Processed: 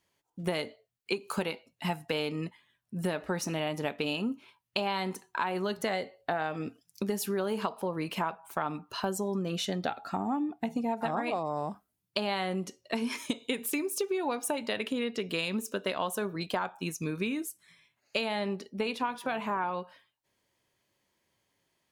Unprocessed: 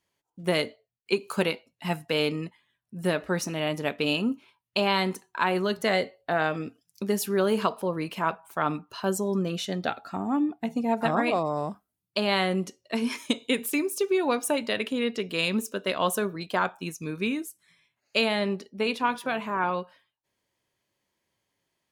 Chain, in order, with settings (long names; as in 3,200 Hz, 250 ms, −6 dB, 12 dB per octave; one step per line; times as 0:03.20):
dynamic equaliser 830 Hz, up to +6 dB, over −44 dBFS, Q 4
downward compressor 6 to 1, threshold −31 dBFS, peak gain reduction 13 dB
level +2.5 dB